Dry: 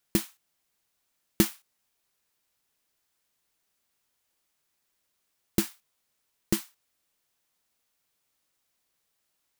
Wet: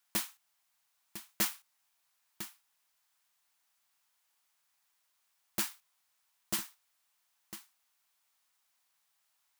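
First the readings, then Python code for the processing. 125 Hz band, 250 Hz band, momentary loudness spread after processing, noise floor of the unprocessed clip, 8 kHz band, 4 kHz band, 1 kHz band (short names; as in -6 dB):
-16.5 dB, -15.5 dB, 16 LU, -78 dBFS, -2.0 dB, -2.0 dB, -0.5 dB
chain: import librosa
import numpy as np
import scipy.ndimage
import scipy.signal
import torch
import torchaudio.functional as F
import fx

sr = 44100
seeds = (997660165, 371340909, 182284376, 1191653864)

p1 = scipy.signal.sosfilt(scipy.signal.butter(2, 66.0, 'highpass', fs=sr, output='sos'), x)
p2 = fx.low_shelf_res(p1, sr, hz=620.0, db=-10.0, q=1.5)
p3 = p2 + fx.echo_single(p2, sr, ms=1004, db=-15.0, dry=0)
y = fx.transformer_sat(p3, sr, knee_hz=2800.0)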